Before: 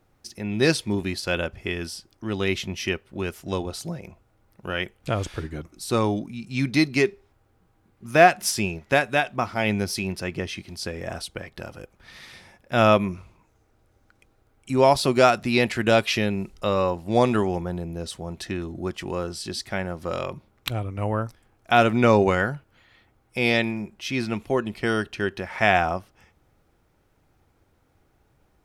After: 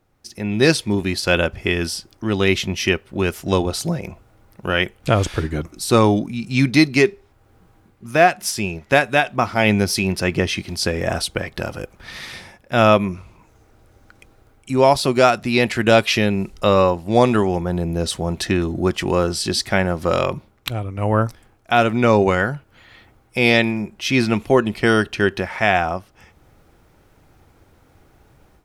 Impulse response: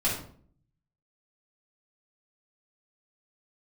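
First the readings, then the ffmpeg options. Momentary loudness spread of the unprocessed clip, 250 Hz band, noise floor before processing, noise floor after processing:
16 LU, +6.0 dB, -65 dBFS, -55 dBFS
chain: -af "dynaudnorm=f=210:g=3:m=3.98,volume=0.891"

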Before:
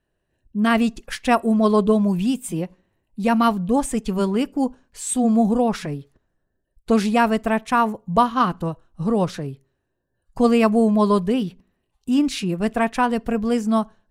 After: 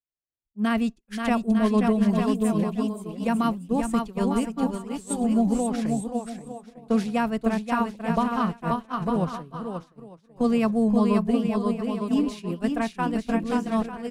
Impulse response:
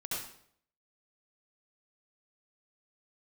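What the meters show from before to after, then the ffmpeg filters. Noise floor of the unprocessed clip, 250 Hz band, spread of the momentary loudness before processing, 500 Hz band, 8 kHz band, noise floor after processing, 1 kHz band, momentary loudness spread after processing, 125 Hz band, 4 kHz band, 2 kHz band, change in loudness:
-75 dBFS, -3.0 dB, 12 LU, -6.0 dB, -7.0 dB, -63 dBFS, -6.5 dB, 9 LU, -3.0 dB, -7.0 dB, -6.5 dB, -4.5 dB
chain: -filter_complex "[0:a]aecho=1:1:530|901|1161|1342|1470:0.631|0.398|0.251|0.158|0.1,agate=range=0.0224:threshold=0.2:ratio=3:detection=peak,acrossover=split=220[s0][s1];[s1]acompressor=threshold=0.0447:ratio=2.5[s2];[s0][s2]amix=inputs=2:normalize=0"

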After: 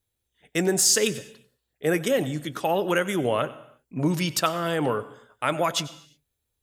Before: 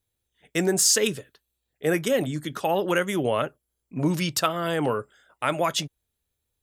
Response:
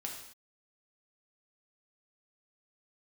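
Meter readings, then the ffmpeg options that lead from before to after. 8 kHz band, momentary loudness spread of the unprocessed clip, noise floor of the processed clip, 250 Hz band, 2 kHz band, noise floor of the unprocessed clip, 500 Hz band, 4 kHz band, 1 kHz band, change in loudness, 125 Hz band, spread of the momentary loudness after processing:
0.0 dB, 11 LU, -80 dBFS, 0.0 dB, 0.0 dB, -81 dBFS, 0.0 dB, 0.0 dB, 0.0 dB, 0.0 dB, 0.0 dB, 12 LU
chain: -filter_complex "[0:a]asplit=2[s0][s1];[1:a]atrim=start_sample=2205,adelay=94[s2];[s1][s2]afir=irnorm=-1:irlink=0,volume=0.168[s3];[s0][s3]amix=inputs=2:normalize=0"

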